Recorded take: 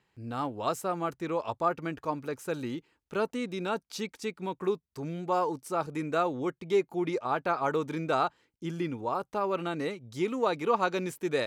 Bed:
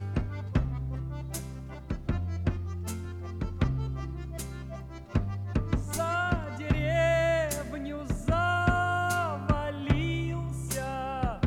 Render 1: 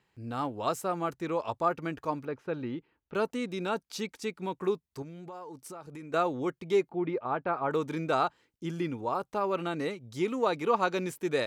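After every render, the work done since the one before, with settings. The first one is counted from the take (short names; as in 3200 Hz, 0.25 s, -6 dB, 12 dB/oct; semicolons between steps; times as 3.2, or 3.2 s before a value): 2.25–3.15 air absorption 310 m; 5.02–6.14 compressor, threshold -41 dBFS; 6.89–7.71 air absorption 420 m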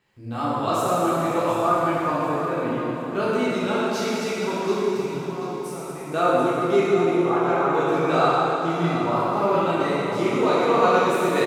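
feedback echo 0.734 s, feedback 35%, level -10.5 dB; plate-style reverb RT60 3.1 s, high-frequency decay 0.9×, DRR -9.5 dB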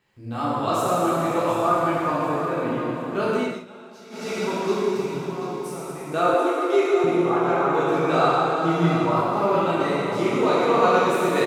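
3.37–4.38 dip -19.5 dB, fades 0.28 s; 6.34–7.04 steep high-pass 280 Hz 96 dB/oct; 8.56–9.21 comb 6.3 ms, depth 56%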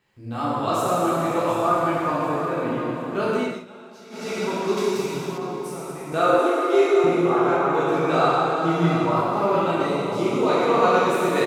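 4.77–5.38 high shelf 3200 Hz +9.5 dB; 6.08–7.57 doubler 43 ms -3.5 dB; 9.85–10.48 bell 1800 Hz -7.5 dB -> -13.5 dB 0.41 oct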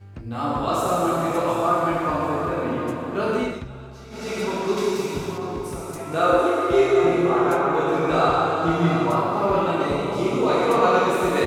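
add bed -9 dB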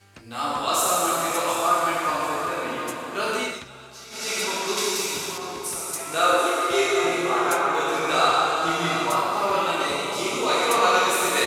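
LPF 12000 Hz 12 dB/oct; tilt +4.5 dB/oct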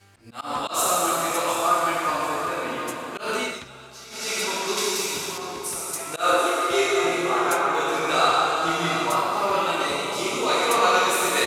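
auto swell 0.125 s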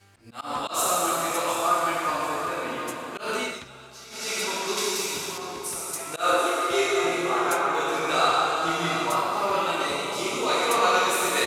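gain -2 dB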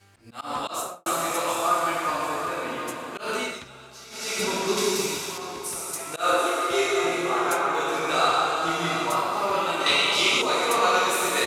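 0.66–1.06 studio fade out; 4.39–5.15 low shelf 360 Hz +11.5 dB; 9.86–10.42 bell 3100 Hz +13.5 dB 1.8 oct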